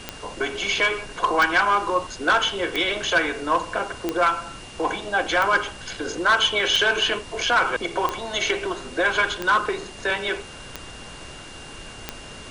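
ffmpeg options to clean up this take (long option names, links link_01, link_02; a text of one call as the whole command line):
ffmpeg -i in.wav -af "adeclick=threshold=4,bandreject=frequency=2800:width=30,afftdn=noise_reduction=28:noise_floor=-40" out.wav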